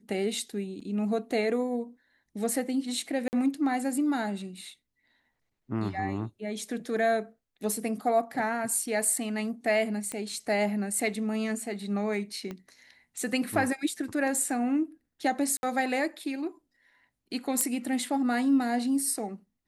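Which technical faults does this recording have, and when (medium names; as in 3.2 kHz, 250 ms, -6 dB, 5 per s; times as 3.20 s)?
0.80 s: dropout 4.3 ms
3.28–3.33 s: dropout 49 ms
10.12 s: pop -20 dBFS
12.51 s: pop -24 dBFS
15.57–15.63 s: dropout 61 ms
17.61 s: pop -10 dBFS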